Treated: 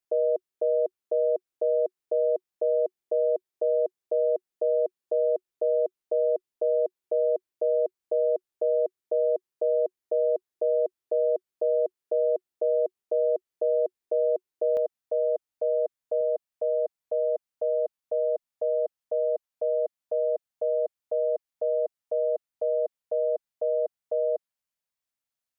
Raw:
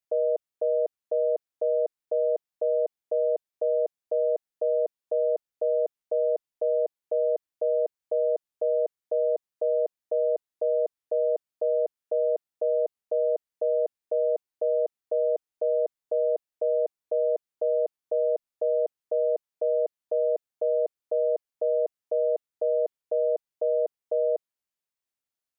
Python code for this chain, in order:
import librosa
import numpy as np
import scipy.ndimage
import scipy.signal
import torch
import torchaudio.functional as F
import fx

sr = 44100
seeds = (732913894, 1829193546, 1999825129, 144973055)

y = fx.peak_eq(x, sr, hz=370.0, db=fx.steps((0.0, 9.0), (14.77, -8.5), (16.21, -15.0)), octaves=0.24)